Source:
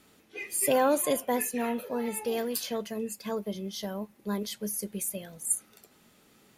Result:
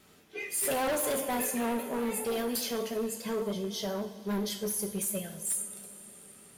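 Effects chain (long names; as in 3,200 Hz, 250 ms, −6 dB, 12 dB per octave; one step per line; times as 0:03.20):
coupled-rooms reverb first 0.5 s, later 4.5 s, from −18 dB, DRR 3 dB
hard clipping −27.5 dBFS, distortion −7 dB
pitch vibrato 10 Hz 32 cents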